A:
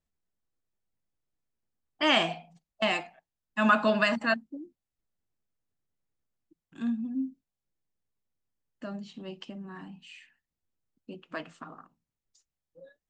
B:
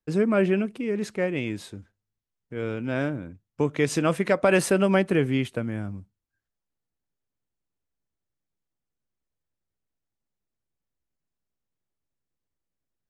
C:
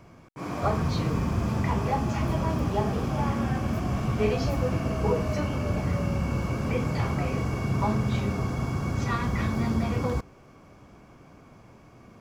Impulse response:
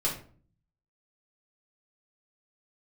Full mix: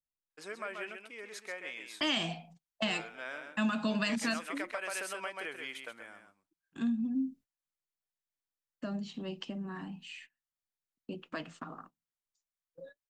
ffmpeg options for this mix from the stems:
-filter_complex "[0:a]agate=range=0.1:threshold=0.002:ratio=16:detection=peak,acrossover=split=270|3000[s0][s1][s2];[s1]acompressor=threshold=0.00562:ratio=2[s3];[s0][s3][s2]amix=inputs=3:normalize=0,volume=1.33[s4];[1:a]highpass=1000,adelay=300,volume=0.531,asplit=2[s5][s6];[s6]volume=0.376[s7];[s5]bandreject=f=2700:w=15,acompressor=threshold=0.0158:ratio=6,volume=1[s8];[s7]aecho=0:1:132:1[s9];[s4][s8][s9]amix=inputs=3:normalize=0,acompressor=threshold=0.0447:ratio=6"

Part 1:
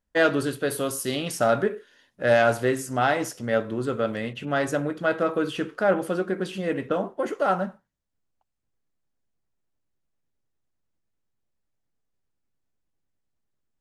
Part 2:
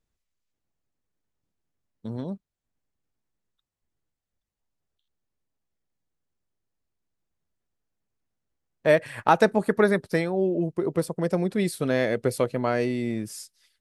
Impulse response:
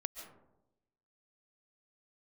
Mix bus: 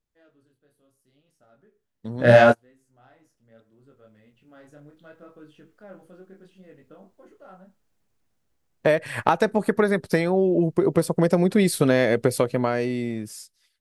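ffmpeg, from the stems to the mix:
-filter_complex "[0:a]agate=range=0.447:threshold=0.00355:ratio=16:detection=peak,lowshelf=f=310:g=8,flanger=delay=19.5:depth=7.6:speed=0.73,volume=1.12[s0];[1:a]acompressor=threshold=0.0562:ratio=6,volume=0.631,asplit=2[s1][s2];[s2]apad=whole_len=608866[s3];[s0][s3]sidechaingate=range=0.01:threshold=0.00112:ratio=16:detection=peak[s4];[s4][s1]amix=inputs=2:normalize=0,dynaudnorm=f=250:g=13:m=6.68"

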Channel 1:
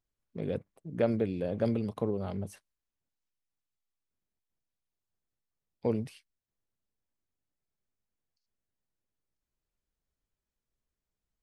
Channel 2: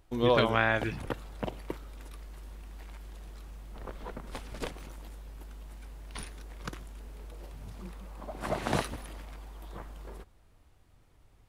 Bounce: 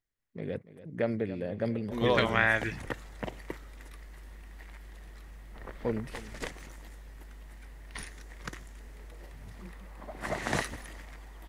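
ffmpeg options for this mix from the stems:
-filter_complex "[0:a]volume=0.75,asplit=2[s0][s1];[s1]volume=0.168[s2];[1:a]adynamicequalizer=threshold=0.00112:dfrequency=6700:dqfactor=1.4:tfrequency=6700:tqfactor=1.4:attack=5:release=100:ratio=0.375:range=3.5:mode=boostabove:tftype=bell,adelay=1800,volume=0.75[s3];[s2]aecho=0:1:286:1[s4];[s0][s3][s4]amix=inputs=3:normalize=0,equalizer=f=1900:t=o:w=0.39:g=11"

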